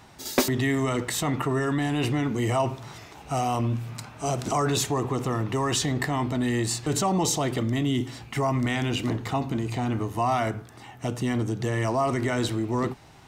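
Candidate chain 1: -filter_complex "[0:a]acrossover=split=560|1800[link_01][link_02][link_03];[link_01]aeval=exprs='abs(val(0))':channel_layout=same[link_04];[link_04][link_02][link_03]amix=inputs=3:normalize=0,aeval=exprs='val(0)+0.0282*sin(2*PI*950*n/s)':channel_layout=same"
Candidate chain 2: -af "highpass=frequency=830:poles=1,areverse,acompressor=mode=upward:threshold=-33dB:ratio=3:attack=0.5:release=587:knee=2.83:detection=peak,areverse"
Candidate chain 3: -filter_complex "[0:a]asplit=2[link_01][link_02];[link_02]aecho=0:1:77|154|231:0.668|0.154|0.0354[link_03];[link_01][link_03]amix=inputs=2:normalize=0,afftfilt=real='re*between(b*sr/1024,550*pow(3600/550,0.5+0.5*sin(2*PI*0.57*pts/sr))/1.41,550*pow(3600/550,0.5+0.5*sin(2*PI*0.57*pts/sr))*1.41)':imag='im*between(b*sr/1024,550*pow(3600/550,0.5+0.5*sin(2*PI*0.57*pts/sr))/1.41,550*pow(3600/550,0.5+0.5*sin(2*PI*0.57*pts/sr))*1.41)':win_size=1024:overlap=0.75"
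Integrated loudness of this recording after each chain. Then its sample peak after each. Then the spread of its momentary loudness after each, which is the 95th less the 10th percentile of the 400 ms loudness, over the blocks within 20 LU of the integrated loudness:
−28.5, −31.5, −33.0 LKFS; −7.5, −9.5, −14.5 dBFS; 5, 10, 17 LU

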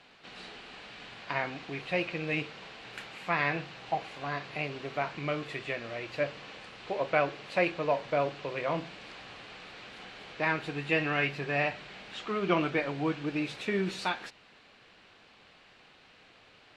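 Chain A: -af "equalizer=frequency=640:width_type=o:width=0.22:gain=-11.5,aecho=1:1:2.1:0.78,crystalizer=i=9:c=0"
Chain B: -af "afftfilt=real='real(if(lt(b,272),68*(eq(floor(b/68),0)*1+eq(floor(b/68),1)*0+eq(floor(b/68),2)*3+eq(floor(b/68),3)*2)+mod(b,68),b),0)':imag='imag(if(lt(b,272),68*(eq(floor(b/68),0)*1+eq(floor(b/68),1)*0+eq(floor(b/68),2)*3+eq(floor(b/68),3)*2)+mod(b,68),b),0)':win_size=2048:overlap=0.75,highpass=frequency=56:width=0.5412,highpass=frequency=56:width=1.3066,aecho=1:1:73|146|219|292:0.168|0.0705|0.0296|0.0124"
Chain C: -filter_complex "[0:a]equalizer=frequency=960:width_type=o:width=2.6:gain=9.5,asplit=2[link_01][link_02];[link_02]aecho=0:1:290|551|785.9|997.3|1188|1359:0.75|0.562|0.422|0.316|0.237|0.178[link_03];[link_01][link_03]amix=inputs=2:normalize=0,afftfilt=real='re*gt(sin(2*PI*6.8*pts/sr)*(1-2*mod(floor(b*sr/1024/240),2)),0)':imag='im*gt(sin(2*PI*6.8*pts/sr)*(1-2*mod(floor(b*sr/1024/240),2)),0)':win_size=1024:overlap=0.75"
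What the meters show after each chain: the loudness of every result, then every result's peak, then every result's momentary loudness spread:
−24.0, −30.5, −27.0 LKFS; −4.5, −11.5, −7.5 dBFS; 23, 19, 14 LU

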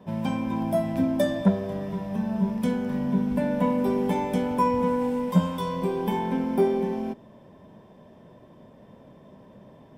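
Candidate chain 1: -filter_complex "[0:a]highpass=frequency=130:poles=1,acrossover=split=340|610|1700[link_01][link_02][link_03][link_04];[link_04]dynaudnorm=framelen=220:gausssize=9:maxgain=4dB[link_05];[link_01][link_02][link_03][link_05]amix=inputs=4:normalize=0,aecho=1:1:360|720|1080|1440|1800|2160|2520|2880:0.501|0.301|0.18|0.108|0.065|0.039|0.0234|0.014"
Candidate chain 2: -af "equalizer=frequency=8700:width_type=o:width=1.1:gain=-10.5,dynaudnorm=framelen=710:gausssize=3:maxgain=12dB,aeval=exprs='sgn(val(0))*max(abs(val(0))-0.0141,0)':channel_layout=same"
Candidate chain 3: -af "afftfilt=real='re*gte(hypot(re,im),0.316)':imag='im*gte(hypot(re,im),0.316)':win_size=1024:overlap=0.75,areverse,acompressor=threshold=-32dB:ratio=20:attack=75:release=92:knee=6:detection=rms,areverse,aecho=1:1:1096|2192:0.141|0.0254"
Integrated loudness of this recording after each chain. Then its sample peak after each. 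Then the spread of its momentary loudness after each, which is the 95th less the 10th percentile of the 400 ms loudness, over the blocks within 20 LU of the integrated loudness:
−25.0, −18.5, −34.0 LKFS; −9.0, −2.0, −21.5 dBFS; 13, 11, 16 LU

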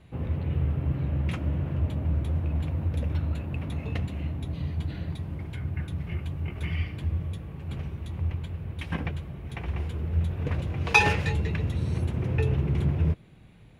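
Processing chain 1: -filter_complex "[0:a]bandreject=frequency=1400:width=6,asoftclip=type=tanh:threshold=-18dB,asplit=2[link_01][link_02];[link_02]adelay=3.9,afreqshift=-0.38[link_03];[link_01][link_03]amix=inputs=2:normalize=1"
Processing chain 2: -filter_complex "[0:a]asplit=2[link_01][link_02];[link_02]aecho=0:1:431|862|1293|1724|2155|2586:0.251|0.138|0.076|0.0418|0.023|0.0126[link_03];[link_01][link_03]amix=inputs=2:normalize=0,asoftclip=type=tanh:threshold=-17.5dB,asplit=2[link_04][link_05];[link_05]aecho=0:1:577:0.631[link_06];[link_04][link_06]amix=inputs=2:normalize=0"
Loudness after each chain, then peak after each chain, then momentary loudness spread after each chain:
−34.0, −29.0 LKFS; −15.5, −14.5 dBFS; 9, 7 LU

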